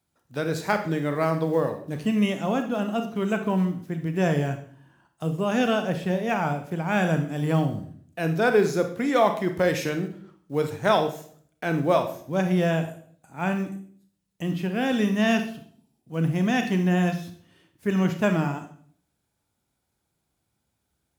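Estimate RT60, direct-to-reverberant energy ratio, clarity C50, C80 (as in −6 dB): 0.55 s, 6.5 dB, 9.5 dB, 13.0 dB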